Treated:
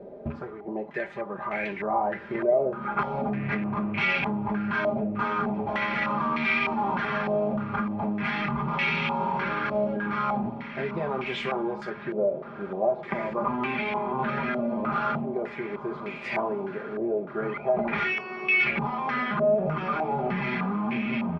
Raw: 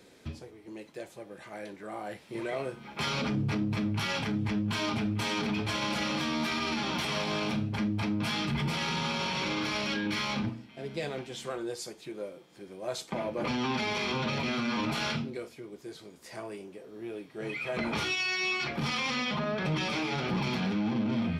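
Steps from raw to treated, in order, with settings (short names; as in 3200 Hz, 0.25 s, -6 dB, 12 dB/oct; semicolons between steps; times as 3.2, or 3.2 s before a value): rattling part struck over -36 dBFS, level -35 dBFS; comb 5 ms, depth 64%; compressor 6:1, threshold -37 dBFS, peak gain reduction 13.5 dB; 11.9–14.19 air absorption 240 m; diffused feedback echo 1.58 s, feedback 48%, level -13 dB; stepped low-pass 3.3 Hz 630–2300 Hz; gain +9 dB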